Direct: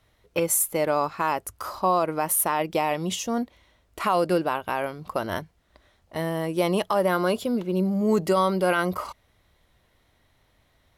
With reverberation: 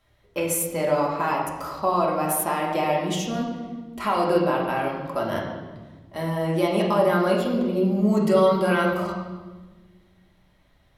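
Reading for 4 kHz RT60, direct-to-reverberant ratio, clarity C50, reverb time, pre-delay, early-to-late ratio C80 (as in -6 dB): 1.1 s, -3.0 dB, 3.0 dB, 1.3 s, 3 ms, 5.0 dB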